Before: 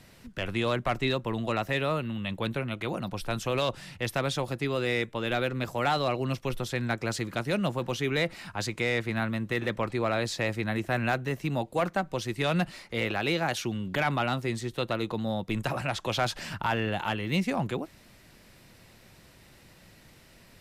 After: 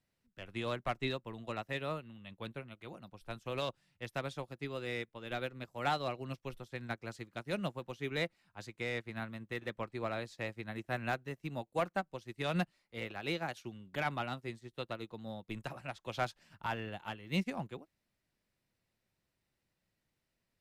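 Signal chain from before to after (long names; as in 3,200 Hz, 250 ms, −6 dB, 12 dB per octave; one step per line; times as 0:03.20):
expander for the loud parts 2.5 to 1, over −40 dBFS
level −4.5 dB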